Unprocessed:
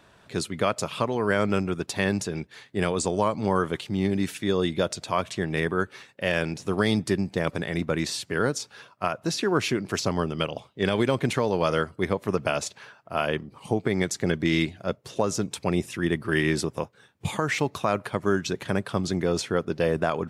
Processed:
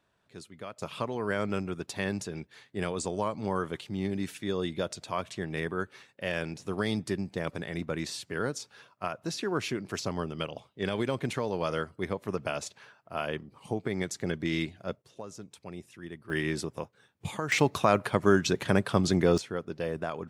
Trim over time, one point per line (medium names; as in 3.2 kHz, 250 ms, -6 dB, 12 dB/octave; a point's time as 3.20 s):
-17.5 dB
from 0.82 s -7 dB
from 15.02 s -17.5 dB
from 16.30 s -7 dB
from 17.52 s +1.5 dB
from 19.38 s -9 dB